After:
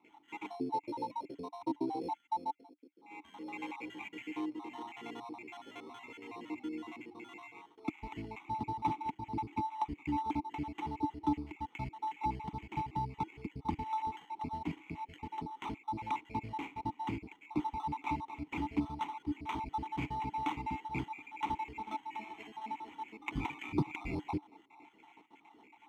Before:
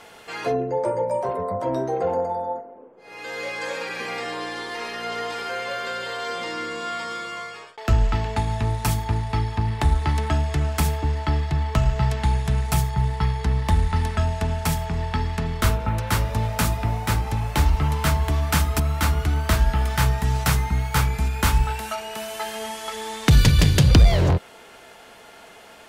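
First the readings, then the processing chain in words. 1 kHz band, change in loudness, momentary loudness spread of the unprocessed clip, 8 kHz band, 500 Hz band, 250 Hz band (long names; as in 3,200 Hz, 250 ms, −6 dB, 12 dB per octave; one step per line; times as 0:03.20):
−9.0 dB, −16.5 dB, 9 LU, below −30 dB, −20.0 dB, −9.5 dB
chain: time-frequency cells dropped at random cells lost 61%
sample-rate reduction 4,800 Hz, jitter 0%
formant filter u
level +4 dB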